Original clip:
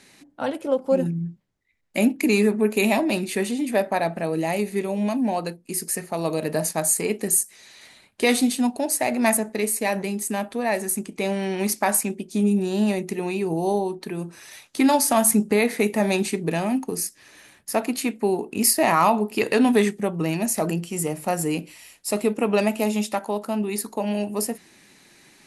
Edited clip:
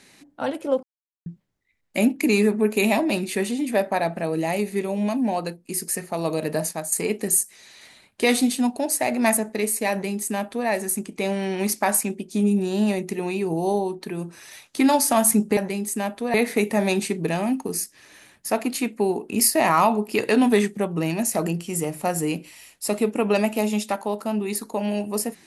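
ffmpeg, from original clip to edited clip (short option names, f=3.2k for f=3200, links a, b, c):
-filter_complex "[0:a]asplit=6[a][b][c][d][e][f];[a]atrim=end=0.83,asetpts=PTS-STARTPTS,afade=t=out:st=0.826:d=0.004:c=hsin[g];[b]atrim=start=0.83:end=1.26,asetpts=PTS-STARTPTS,volume=0[h];[c]atrim=start=1.26:end=6.92,asetpts=PTS-STARTPTS,afade=t=in:d=0.004:c=hsin,afade=t=out:st=5.18:d=0.48:c=qsin:silence=0.237137[i];[d]atrim=start=6.92:end=15.572,asetpts=PTS-STARTPTS,afade=t=in:d=0.004:c=hsin:silence=0.237137[j];[e]atrim=start=9.908:end=10.682[k];[f]atrim=start=15.568[l];[g][h][i][j]concat=n=4:v=0:a=1[m];[m][k]acrossfade=d=0.004:c1=hsin:c2=hsin[n];[n][l]acrossfade=d=0.004:c1=hsin:c2=hsin"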